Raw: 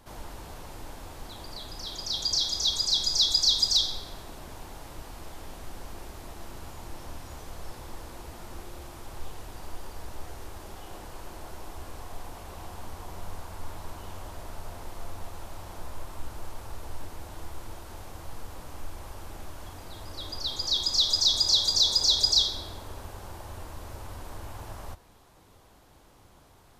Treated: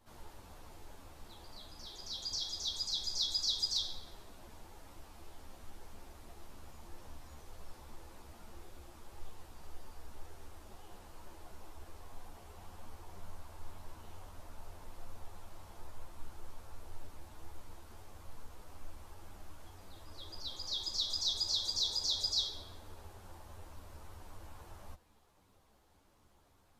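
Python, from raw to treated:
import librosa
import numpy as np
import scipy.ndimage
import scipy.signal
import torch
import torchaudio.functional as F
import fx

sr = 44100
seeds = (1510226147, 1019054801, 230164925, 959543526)

y = fx.ensemble(x, sr)
y = F.gain(torch.from_numpy(y), -8.5).numpy()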